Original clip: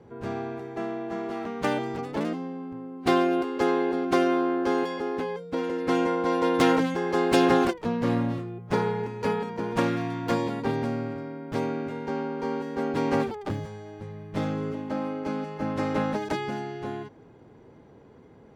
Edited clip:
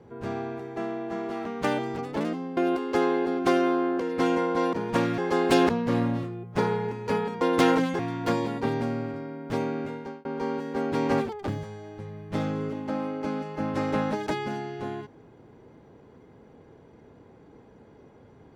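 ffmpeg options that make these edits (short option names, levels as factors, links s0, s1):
-filter_complex "[0:a]asplit=9[s0][s1][s2][s3][s4][s5][s6][s7][s8];[s0]atrim=end=2.572[s9];[s1]atrim=start=3.228:end=4.662[s10];[s2]atrim=start=5.688:end=6.422[s11];[s3]atrim=start=9.558:end=10.012[s12];[s4]atrim=start=6.998:end=7.512[s13];[s5]atrim=start=7.838:end=9.562[s14];[s6]atrim=start=6.418:end=7.002[s15];[s7]atrim=start=10.008:end=12.27,asetpts=PTS-STARTPTS,afade=t=out:st=1.892:d=0.37[s16];[s8]atrim=start=12.27,asetpts=PTS-STARTPTS,afade=t=in:d=0.004:c=hsin[s17];[s9][s10]acrossfade=d=0.004:c1=hsin:c2=hsin[s18];[s18][s11]acrossfade=d=0.004:c1=hsin:c2=hsin[s19];[s19][s12]acrossfade=d=0.004:c1=hsin:c2=hsin[s20];[s20][s13]acrossfade=d=0.004:c1=hsin:c2=hsin[s21];[s21][s14]acrossfade=d=0.004:c1=hsin:c2=hsin[s22];[s22][s15]acrossfade=d=0.004:c1=hsin:c2=hsin[s23];[s16][s17]concat=n=2:v=0:a=1[s24];[s23][s24]acrossfade=d=0.004:c1=hsin:c2=hsin"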